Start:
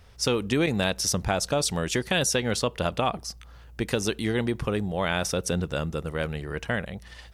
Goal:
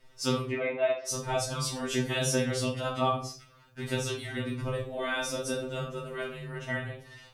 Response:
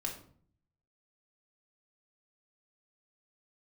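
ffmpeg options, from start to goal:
-filter_complex "[0:a]asplit=3[s0][s1][s2];[s0]afade=t=out:st=0.49:d=0.02[s3];[s1]highpass=410,equalizer=f=620:t=q:w=4:g=5,equalizer=f=1500:t=q:w=4:g=-7,equalizer=f=2100:t=q:w=4:g=7,lowpass=f=2400:w=0.5412,lowpass=f=2400:w=1.3066,afade=t=in:st=0.49:d=0.02,afade=t=out:st=1.07:d=0.02[s4];[s2]afade=t=in:st=1.07:d=0.02[s5];[s3][s4][s5]amix=inputs=3:normalize=0[s6];[1:a]atrim=start_sample=2205,afade=t=out:st=0.29:d=0.01,atrim=end_sample=13230[s7];[s6][s7]afir=irnorm=-1:irlink=0,afftfilt=real='re*2.45*eq(mod(b,6),0)':imag='im*2.45*eq(mod(b,6),0)':win_size=2048:overlap=0.75,volume=0.708"

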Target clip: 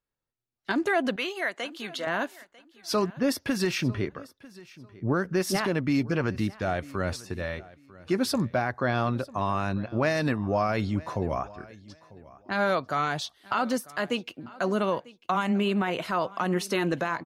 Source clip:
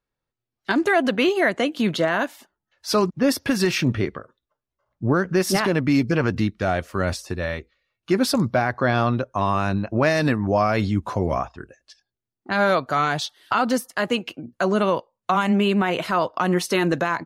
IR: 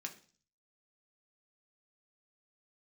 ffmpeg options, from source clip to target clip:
-filter_complex "[0:a]asettb=1/sr,asplit=3[s0][s1][s2];[s0]atrim=end=1.164[s3];[s1]atrim=start=1.16:end=2.07,asetpts=PTS-STARTPTS,afade=t=in:d=0.004:c=qsin,afade=t=out:st=0.906:d=0.004:c=qsin,highpass=f=1100:p=1[s4];[s2]atrim=start=2.066[s5];[s3][s4]acrossfade=d=0.004:c1=hsin:c2=qsin[s6];[s6][s5]acrossfade=d=0.004:c1=qsin:c2=hsin,asplit=2[s7][s8];[s8]aecho=0:1:946|1892:0.0891|0.0196[s9];[s7][s9]amix=inputs=2:normalize=0,volume=0.501"

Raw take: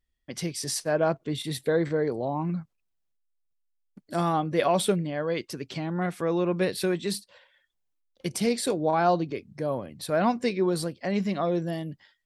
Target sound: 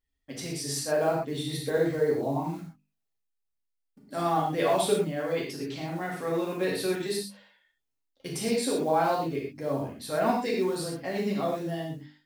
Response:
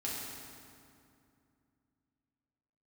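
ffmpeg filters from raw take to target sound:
-filter_complex "[0:a]acrusher=bits=7:mode=log:mix=0:aa=0.000001,bandreject=f=50:t=h:w=6,bandreject=f=100:t=h:w=6,bandreject=f=150:t=h:w=6,bandreject=f=200:t=h:w=6,bandreject=f=250:t=h:w=6,bandreject=f=300:t=h:w=6[s0];[1:a]atrim=start_sample=2205,afade=t=out:st=0.18:d=0.01,atrim=end_sample=8379[s1];[s0][s1]afir=irnorm=-1:irlink=0,volume=0.794"

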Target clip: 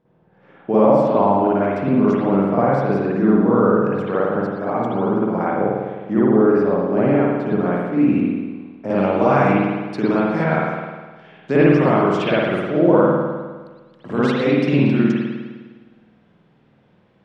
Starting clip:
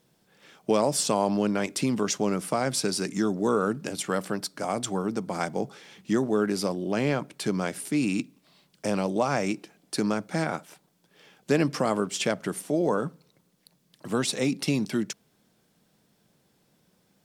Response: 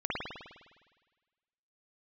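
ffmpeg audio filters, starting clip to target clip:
-filter_complex "[0:a]asetnsamples=n=441:p=0,asendcmd='8.9 lowpass f 2700',lowpass=1300[s0];[1:a]atrim=start_sample=2205[s1];[s0][s1]afir=irnorm=-1:irlink=0,volume=1.41"

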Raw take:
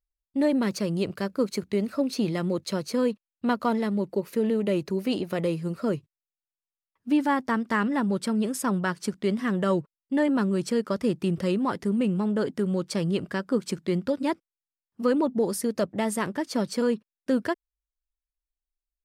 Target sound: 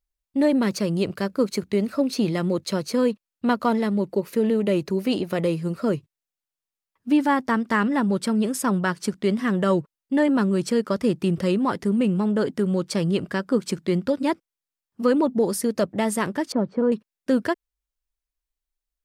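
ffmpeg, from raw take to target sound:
-filter_complex "[0:a]asettb=1/sr,asplit=3[s0][s1][s2];[s0]atrim=end=16.524[s3];[s1]atrim=start=16.52:end=16.92,asetpts=PTS-STARTPTS,afade=t=in:d=0.004:c=qsin,afade=t=out:st=0.396:d=0.004:c=qsin,lowpass=1000[s4];[s2]atrim=start=16.916[s5];[s3][s4]acrossfade=d=0.004:c1=hsin:c2=qsin[s6];[s6][s5]acrossfade=d=0.004:c1=qsin:c2=hsin,volume=1.5"

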